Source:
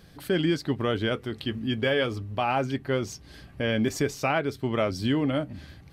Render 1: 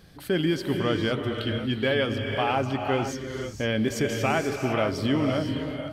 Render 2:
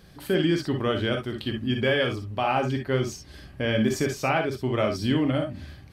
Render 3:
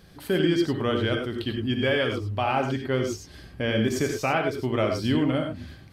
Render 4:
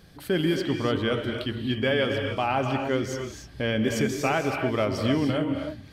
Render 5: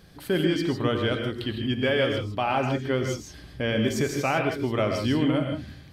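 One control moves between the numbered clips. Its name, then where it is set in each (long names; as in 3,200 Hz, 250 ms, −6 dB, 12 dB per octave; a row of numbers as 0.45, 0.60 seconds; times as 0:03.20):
reverb whose tail is shaped and stops, gate: 530, 80, 120, 320, 180 milliseconds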